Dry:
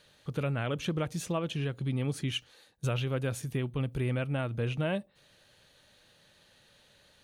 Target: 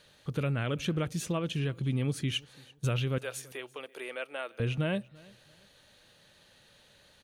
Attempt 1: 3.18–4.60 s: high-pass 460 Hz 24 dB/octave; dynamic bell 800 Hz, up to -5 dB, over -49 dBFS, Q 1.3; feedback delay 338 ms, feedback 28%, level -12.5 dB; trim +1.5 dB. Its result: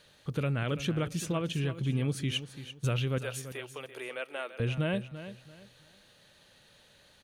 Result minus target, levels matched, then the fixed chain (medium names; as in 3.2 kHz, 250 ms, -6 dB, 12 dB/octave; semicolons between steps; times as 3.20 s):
echo-to-direct +11.5 dB
3.18–4.60 s: high-pass 460 Hz 24 dB/octave; dynamic bell 800 Hz, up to -5 dB, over -49 dBFS, Q 1.3; feedback delay 338 ms, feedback 28%, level -24 dB; trim +1.5 dB